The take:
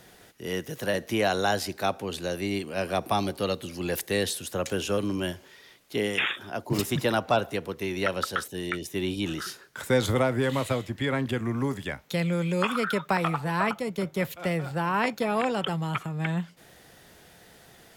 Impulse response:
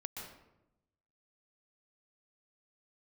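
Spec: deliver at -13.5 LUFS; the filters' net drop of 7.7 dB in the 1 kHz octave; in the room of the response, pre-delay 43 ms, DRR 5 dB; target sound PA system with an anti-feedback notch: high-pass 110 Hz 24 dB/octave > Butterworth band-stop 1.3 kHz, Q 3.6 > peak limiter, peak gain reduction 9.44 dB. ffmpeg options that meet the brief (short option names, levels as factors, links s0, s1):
-filter_complex "[0:a]equalizer=f=1000:t=o:g=-9,asplit=2[s0][s1];[1:a]atrim=start_sample=2205,adelay=43[s2];[s1][s2]afir=irnorm=-1:irlink=0,volume=0.668[s3];[s0][s3]amix=inputs=2:normalize=0,highpass=f=110:w=0.5412,highpass=f=110:w=1.3066,asuperstop=centerf=1300:order=8:qfactor=3.6,volume=7.94,alimiter=limit=0.668:level=0:latency=1"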